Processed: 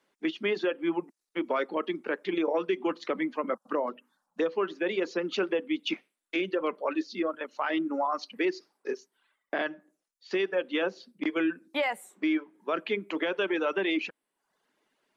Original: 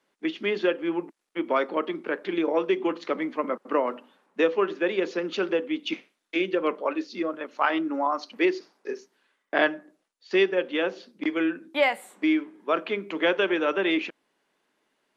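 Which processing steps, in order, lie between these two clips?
reverb removal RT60 0.65 s; 3.54–4.46 s: touch-sensitive phaser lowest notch 320 Hz, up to 2.6 kHz, full sweep at -21.5 dBFS; peak limiter -19 dBFS, peak gain reduction 11 dB

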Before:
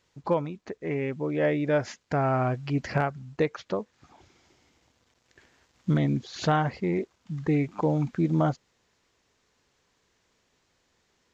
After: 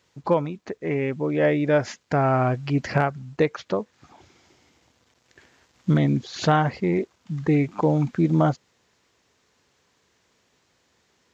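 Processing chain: high-pass 68 Hz; trim +4.5 dB

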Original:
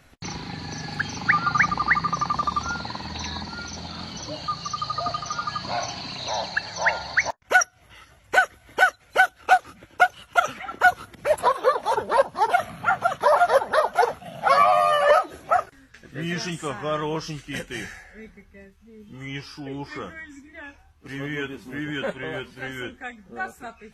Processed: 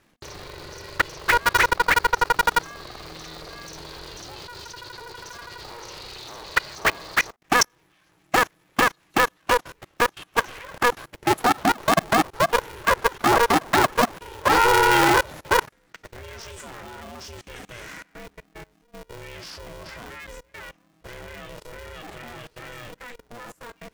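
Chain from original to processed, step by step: level held to a coarse grid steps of 23 dB; polarity switched at an audio rate 240 Hz; trim +6.5 dB

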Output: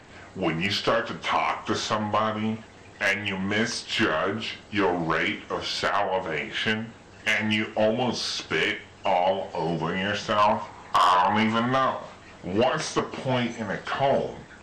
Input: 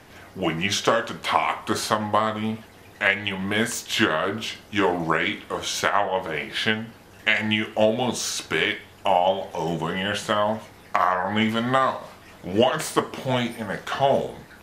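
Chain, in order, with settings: knee-point frequency compression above 2.7 kHz 1.5:1; 10.38–11.66 s: peaking EQ 980 Hz +12.5 dB 0.7 oct; saturation -15 dBFS, distortion -9 dB

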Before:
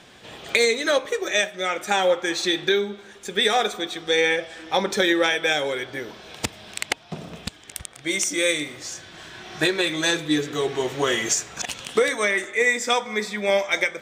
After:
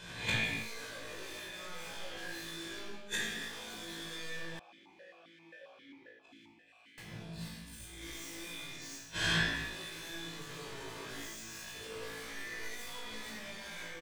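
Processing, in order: reverse spectral sustain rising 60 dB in 0.67 s; gate -34 dBFS, range -22 dB; peaking EQ 700 Hz -8 dB 0.81 oct; comb 1.2 ms, depth 35%; level rider; peak limiter -15.5 dBFS, peak gain reduction 14 dB; wavefolder -24 dBFS; inverted gate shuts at -38 dBFS, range -41 dB; flutter echo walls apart 3.1 m, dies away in 0.36 s; reverberation, pre-delay 23 ms, DRR -3 dB; 4.59–6.98 s: stepped vowel filter 7.5 Hz; trim +15 dB

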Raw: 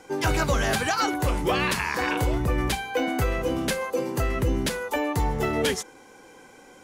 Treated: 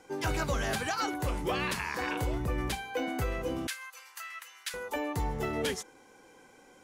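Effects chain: 3.67–4.74 s: high-pass 1.3 kHz 24 dB/octave; trim -7.5 dB

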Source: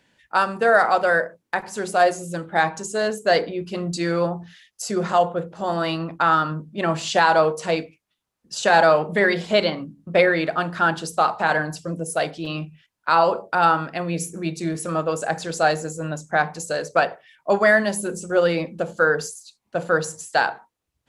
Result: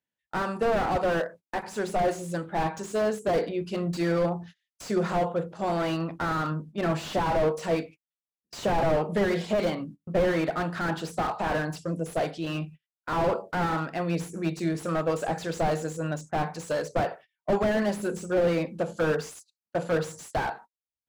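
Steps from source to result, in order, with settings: gate -40 dBFS, range -28 dB; slew-rate limiter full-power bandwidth 63 Hz; trim -2 dB

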